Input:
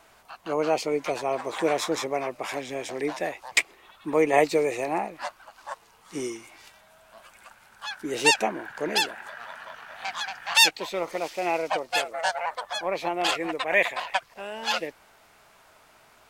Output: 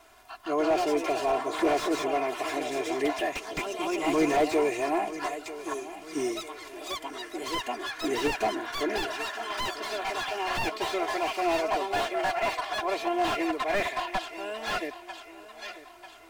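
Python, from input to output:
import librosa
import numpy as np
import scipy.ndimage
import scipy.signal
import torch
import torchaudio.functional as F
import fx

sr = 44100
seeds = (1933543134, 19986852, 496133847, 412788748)

p1 = fx.echo_pitch(x, sr, ms=176, semitones=2, count=3, db_per_echo=-6.0)
p2 = p1 + 0.94 * np.pad(p1, (int(2.9 * sr / 1000.0), 0))[:len(p1)]
p3 = np.clip(10.0 ** (18.5 / 20.0) * p2, -1.0, 1.0) / 10.0 ** (18.5 / 20.0)
p4 = p2 + (p3 * 10.0 ** (-7.0 / 20.0))
p5 = fx.graphic_eq_15(p4, sr, hz=(160, 630, 6300), db=(11, -6, 11), at=(3.32, 4.37))
p6 = p5 + fx.echo_feedback(p5, sr, ms=944, feedback_pct=48, wet_db=-15.5, dry=0)
p7 = fx.slew_limit(p6, sr, full_power_hz=150.0)
y = p7 * 10.0 ** (-6.0 / 20.0)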